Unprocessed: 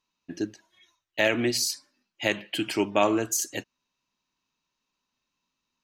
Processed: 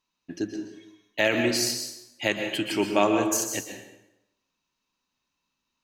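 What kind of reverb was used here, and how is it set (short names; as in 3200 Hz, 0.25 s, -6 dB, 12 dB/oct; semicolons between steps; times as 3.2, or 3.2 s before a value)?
plate-style reverb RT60 0.88 s, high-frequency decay 0.8×, pre-delay 0.11 s, DRR 5 dB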